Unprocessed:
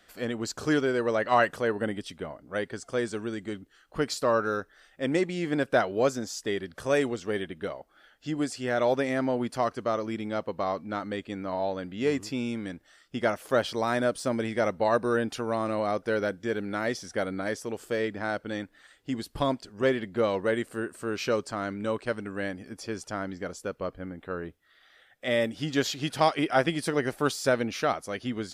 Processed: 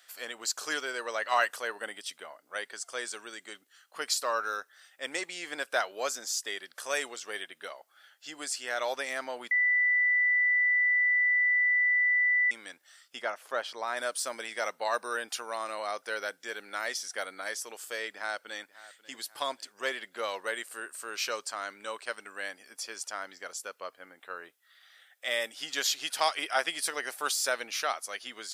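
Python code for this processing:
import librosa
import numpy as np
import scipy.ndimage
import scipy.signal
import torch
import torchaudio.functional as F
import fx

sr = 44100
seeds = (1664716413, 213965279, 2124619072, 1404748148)

y = fx.lowpass(x, sr, hz=1700.0, slope=6, at=(13.21, 13.96), fade=0.02)
y = fx.echo_throw(y, sr, start_s=18.14, length_s=0.99, ms=540, feedback_pct=45, wet_db=-18.0)
y = fx.edit(y, sr, fx.bleep(start_s=9.51, length_s=3.0, hz=1980.0, db=-22.0), tone=tone)
y = scipy.signal.sosfilt(scipy.signal.butter(2, 850.0, 'highpass', fs=sr, output='sos'), y)
y = fx.high_shelf(y, sr, hz=4700.0, db=11.0)
y = y * librosa.db_to_amplitude(-1.5)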